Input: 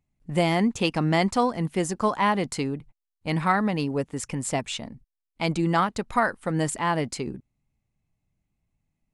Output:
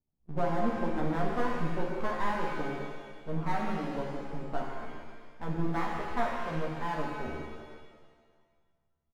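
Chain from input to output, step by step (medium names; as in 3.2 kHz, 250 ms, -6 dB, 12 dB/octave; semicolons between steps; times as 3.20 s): low-pass 1 kHz 24 dB/octave; half-wave rectifier; doubling 13 ms -2.5 dB; pitch-shifted reverb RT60 1.6 s, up +7 st, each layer -8 dB, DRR -1 dB; trim -6.5 dB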